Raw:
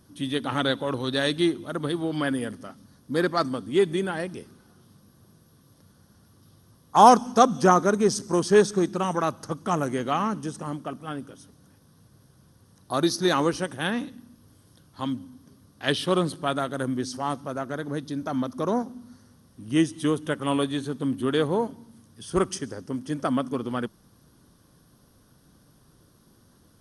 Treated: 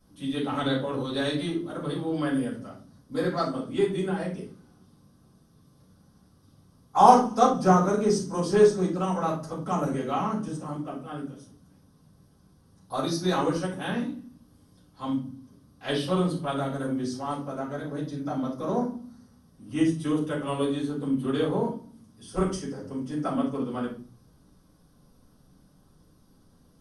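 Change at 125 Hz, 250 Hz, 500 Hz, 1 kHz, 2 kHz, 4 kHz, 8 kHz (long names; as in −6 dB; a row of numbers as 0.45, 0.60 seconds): +0.5, −1.0, −2.0, −1.5, −6.0, −5.5, −5.5 decibels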